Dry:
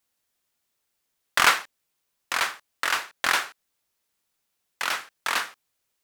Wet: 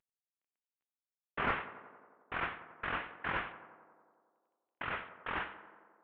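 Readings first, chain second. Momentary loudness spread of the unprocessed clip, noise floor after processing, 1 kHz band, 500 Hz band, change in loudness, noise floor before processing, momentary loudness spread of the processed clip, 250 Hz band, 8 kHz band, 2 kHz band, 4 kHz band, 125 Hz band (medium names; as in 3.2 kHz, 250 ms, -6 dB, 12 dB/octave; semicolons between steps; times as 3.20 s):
10 LU, under -85 dBFS, -11.0 dB, -6.0 dB, -13.5 dB, -78 dBFS, 19 LU, -1.0 dB, under -40 dB, -13.0 dB, -21.0 dB, no reading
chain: CVSD coder 16 kbps; tape echo 90 ms, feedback 81%, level -12 dB, low-pass 1.9 kHz; Chebyshev shaper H 3 -26 dB, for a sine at -12.5 dBFS; trim -5.5 dB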